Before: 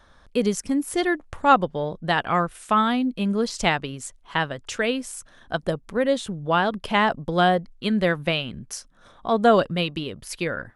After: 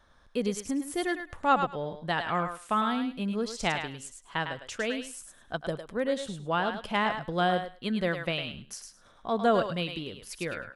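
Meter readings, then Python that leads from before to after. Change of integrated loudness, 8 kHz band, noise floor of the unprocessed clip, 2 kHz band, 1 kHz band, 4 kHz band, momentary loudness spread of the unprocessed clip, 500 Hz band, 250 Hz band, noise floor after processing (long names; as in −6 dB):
−7.0 dB, −6.5 dB, −54 dBFS, −6.5 dB, −7.0 dB, −6.5 dB, 13 LU, −7.0 dB, −7.5 dB, −58 dBFS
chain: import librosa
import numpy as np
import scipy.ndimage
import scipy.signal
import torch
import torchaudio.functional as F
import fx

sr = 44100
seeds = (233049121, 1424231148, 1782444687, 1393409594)

y = fx.echo_thinned(x, sr, ms=105, feedback_pct=18, hz=710.0, wet_db=-5.5)
y = F.gain(torch.from_numpy(y), -7.5).numpy()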